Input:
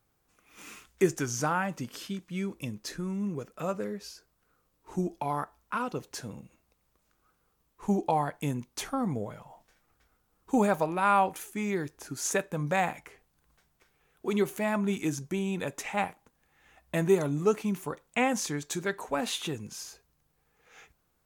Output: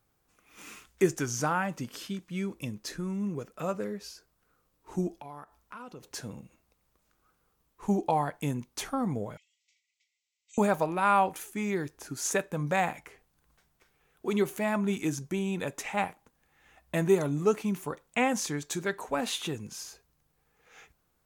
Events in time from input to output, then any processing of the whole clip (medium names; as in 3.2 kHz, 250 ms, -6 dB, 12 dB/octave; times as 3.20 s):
5.12–6.03 s: compression 2.5:1, threshold -47 dBFS
9.37–10.58 s: brick-wall FIR band-pass 1.9–8.1 kHz